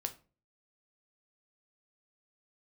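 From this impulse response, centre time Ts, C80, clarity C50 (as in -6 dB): 6 ms, 21.0 dB, 15.5 dB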